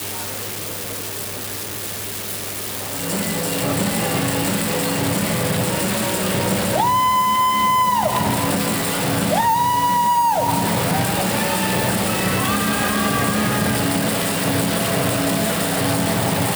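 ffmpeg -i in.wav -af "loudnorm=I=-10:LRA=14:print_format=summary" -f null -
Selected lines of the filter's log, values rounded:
Input Integrated:    -19.2 LUFS
Input True Peak:      -6.5 dBTP
Input LRA:             3.4 LU
Input Threshold:     -29.2 LUFS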